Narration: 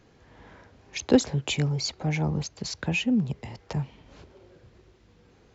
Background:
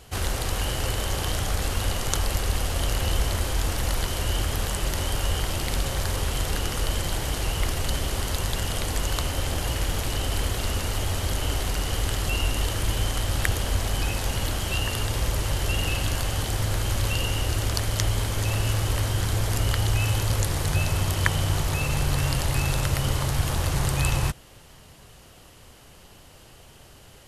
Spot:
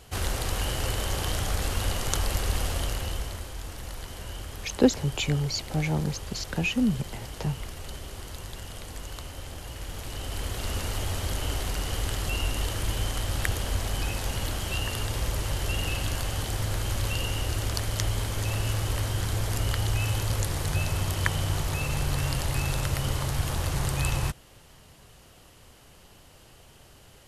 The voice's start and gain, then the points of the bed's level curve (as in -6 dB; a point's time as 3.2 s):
3.70 s, -0.5 dB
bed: 2.69 s -2 dB
3.51 s -12.5 dB
9.7 s -12.5 dB
10.78 s -3.5 dB